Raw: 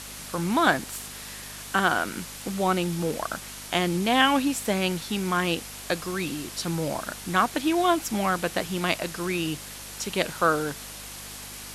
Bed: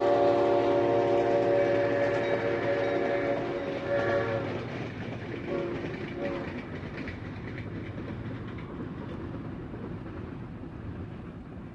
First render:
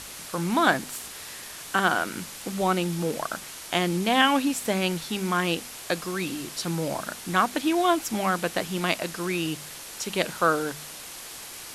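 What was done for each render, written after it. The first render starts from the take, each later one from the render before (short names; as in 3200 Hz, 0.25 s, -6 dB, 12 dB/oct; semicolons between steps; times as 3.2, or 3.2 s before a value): de-hum 50 Hz, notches 5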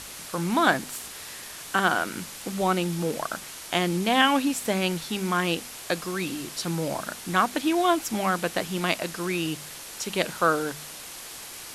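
nothing audible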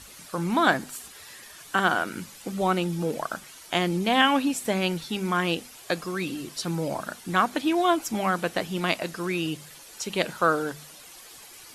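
denoiser 10 dB, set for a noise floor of -41 dBFS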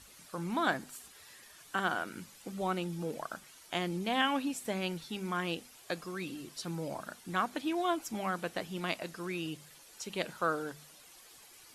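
gain -9.5 dB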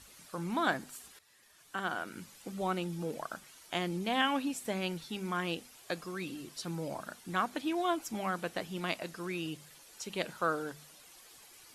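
1.19–2.32 fade in, from -14 dB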